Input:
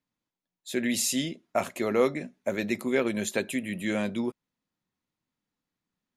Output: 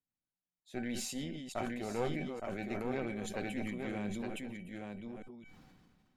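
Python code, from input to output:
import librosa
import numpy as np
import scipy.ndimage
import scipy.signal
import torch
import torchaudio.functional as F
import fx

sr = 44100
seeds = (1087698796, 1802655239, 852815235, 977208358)

p1 = fx.reverse_delay(x, sr, ms=218, wet_db=-12.0)
p2 = fx.lowpass(p1, sr, hz=2600.0, slope=6)
p3 = fx.low_shelf(p2, sr, hz=170.0, db=8.5)
p4 = fx.cheby_harmonics(p3, sr, harmonics=(4,), levels_db=(-15,), full_scale_db=-8.5)
p5 = fx.comb_fb(p4, sr, f0_hz=760.0, decay_s=0.2, harmonics='all', damping=0.0, mix_pct=80)
p6 = p5 + fx.echo_single(p5, sr, ms=865, db=-4.5, dry=0)
p7 = fx.sustainer(p6, sr, db_per_s=29.0)
y = p7 * librosa.db_to_amplitude(-2.0)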